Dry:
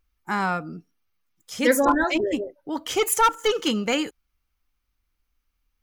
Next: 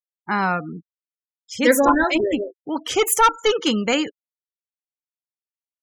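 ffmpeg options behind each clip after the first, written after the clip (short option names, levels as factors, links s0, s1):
-af "afftfilt=real='re*gte(hypot(re,im),0.0141)':imag='im*gte(hypot(re,im),0.0141)':win_size=1024:overlap=0.75,volume=1.5"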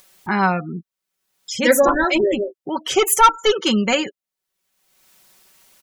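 -af "aecho=1:1:5.3:0.58,acompressor=mode=upward:threshold=0.0631:ratio=2.5,volume=1.12"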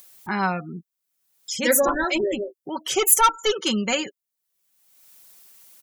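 -af "crystalizer=i=1.5:c=0,volume=0.501"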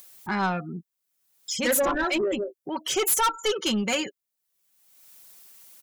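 -af "asoftclip=type=tanh:threshold=0.119"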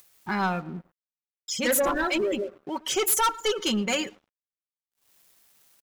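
-filter_complex "[0:a]asplit=2[s0][s1];[s1]adelay=112,lowpass=f=1800:p=1,volume=0.119,asplit=2[s2][s3];[s3]adelay=112,lowpass=f=1800:p=1,volume=0.47,asplit=2[s4][s5];[s5]adelay=112,lowpass=f=1800:p=1,volume=0.47,asplit=2[s6][s7];[s7]adelay=112,lowpass=f=1800:p=1,volume=0.47[s8];[s0][s2][s4][s6][s8]amix=inputs=5:normalize=0,aeval=exprs='sgn(val(0))*max(abs(val(0))-0.00355,0)':c=same"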